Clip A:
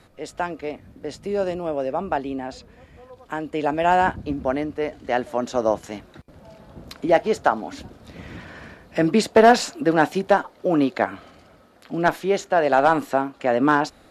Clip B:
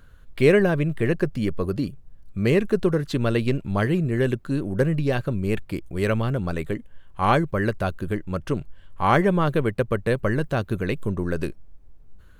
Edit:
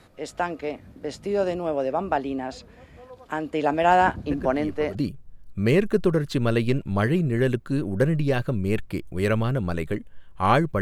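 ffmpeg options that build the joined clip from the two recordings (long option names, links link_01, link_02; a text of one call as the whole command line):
ffmpeg -i cue0.wav -i cue1.wav -filter_complex "[1:a]asplit=2[link_01][link_02];[0:a]apad=whole_dur=10.81,atrim=end=10.81,atrim=end=4.952[link_03];[link_02]atrim=start=1.738:end=7.6[link_04];[link_01]atrim=start=1.1:end=1.74,asetpts=PTS-STARTPTS,volume=-11dB,afade=type=in:duration=0.004:curve=hsin,afade=type=out:start_time=0.636:duration=0.004:curve=hsin,adelay=4310[link_05];[link_03][link_04]acrossfade=duration=0.004:curve1=hsin:curve2=hsin[link_06];[link_06][link_05]amix=inputs=2:normalize=0" out.wav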